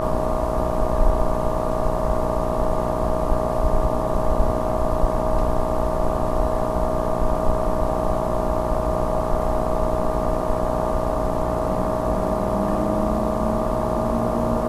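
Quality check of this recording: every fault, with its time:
mains buzz 60 Hz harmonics 20 −26 dBFS
whistle 630 Hz −25 dBFS

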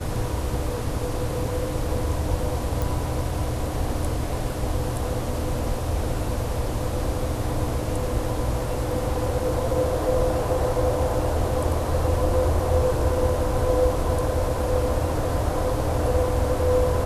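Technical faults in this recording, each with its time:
0:02.82: click

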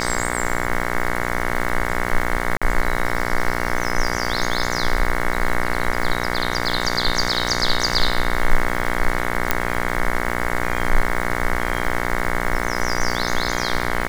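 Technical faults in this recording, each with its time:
mains buzz 60 Hz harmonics 37 −24 dBFS
surface crackle 450 per second −28 dBFS
0:02.57–0:02.62: drop-out 46 ms
0:09.51: click −1 dBFS

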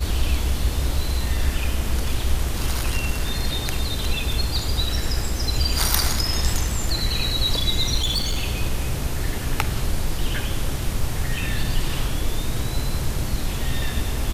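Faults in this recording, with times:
0:07.96–0:08.38: clipping −18 dBFS

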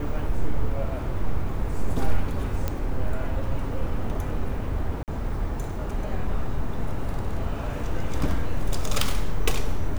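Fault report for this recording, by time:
0:02.68: click −13 dBFS
0:05.03–0:05.08: drop-out 48 ms

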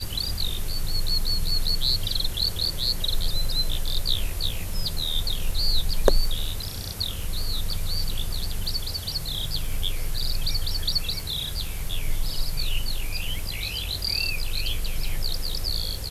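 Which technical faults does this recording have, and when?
surface crackle 15 per second −30 dBFS

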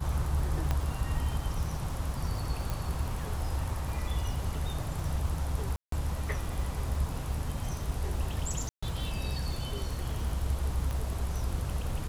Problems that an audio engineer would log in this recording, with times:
surface crackle 170 per second −39 dBFS
0:00.71: click −16 dBFS
0:02.70: click
0:05.76–0:05.92: drop-out 163 ms
0:08.69–0:08.82: drop-out 135 ms
0:10.91: click

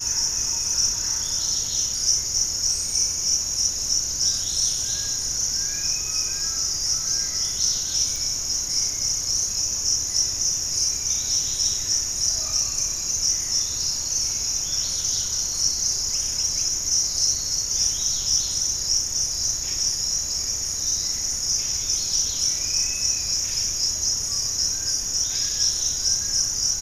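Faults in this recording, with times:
0:08.16: click

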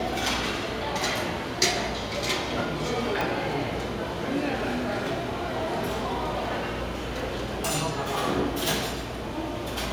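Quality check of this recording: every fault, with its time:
0:03.21: click
0:04.57–0:07.75: clipping −23.5 dBFS

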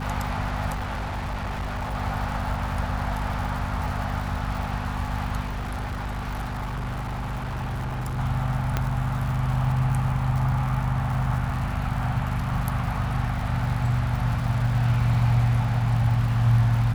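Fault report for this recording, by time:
surface crackle 180 per second −33 dBFS
mains hum 50 Hz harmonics 5 −30 dBFS
0:00.73–0:01.95: clipping −26 dBFS
0:05.45–0:08.19: clipping −26 dBFS
0:08.77: click −10 dBFS

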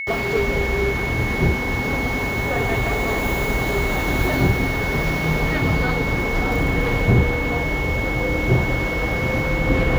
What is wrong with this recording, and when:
whistle 2,200 Hz −25 dBFS

